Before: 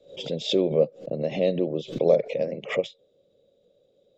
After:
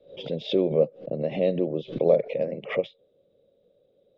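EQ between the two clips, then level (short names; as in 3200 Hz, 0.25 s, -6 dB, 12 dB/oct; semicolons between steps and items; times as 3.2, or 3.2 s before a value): LPF 4000 Hz 12 dB/oct; air absorption 140 m; 0.0 dB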